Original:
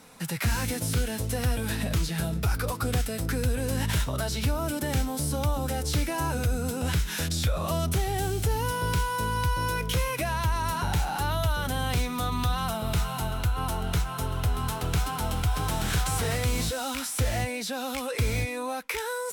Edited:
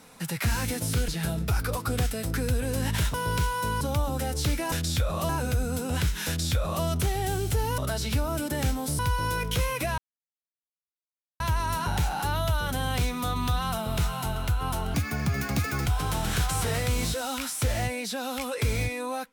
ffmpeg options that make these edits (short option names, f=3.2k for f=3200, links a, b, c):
-filter_complex "[0:a]asplit=11[a][b][c][d][e][f][g][h][i][j][k];[a]atrim=end=1.082[l];[b]atrim=start=2.028:end=4.092[m];[c]atrim=start=8.698:end=9.372[n];[d]atrim=start=5.298:end=6.212[o];[e]atrim=start=7.188:end=7.762[p];[f]atrim=start=6.208:end=8.702[q];[g]atrim=start=4.088:end=5.302[r];[h]atrim=start=9.368:end=10.36,asetpts=PTS-STARTPTS,afade=t=out:st=0.988:d=0.004:c=hsin,apad=pad_dur=1.42[s];[i]atrim=start=10.36:end=13.904,asetpts=PTS-STARTPTS,afade=t=in:d=0.004:c=hsin[t];[j]atrim=start=13.9:end=15.43,asetpts=PTS-STARTPTS,asetrate=73206,aresample=44100,atrim=end_sample=40646,asetpts=PTS-STARTPTS[u];[k]atrim=start=15.426[v];[l][m]acrossfade=d=0.004:c1=hsin:c2=hsin[w];[w][n]acrossfade=d=0.004:c1=hsin:c2=hsin[x];[x][o]acrossfade=d=0.004:c1=hsin:c2=hsin[y];[y][p]acrossfade=d=0.004:c1=hsin:c2=hsin[z];[z][q]acrossfade=d=0.004:c1=hsin:c2=hsin[aa];[aa][r]acrossfade=d=0.004:c1=hsin:c2=hsin[ab];[s][t]concat=n=2:v=0:a=1[ac];[ab][ac]acrossfade=d=0.004:c1=hsin:c2=hsin[ad];[ad][u]acrossfade=d=0.004:c1=hsin:c2=hsin[ae];[ae][v]acrossfade=d=0.004:c1=hsin:c2=hsin"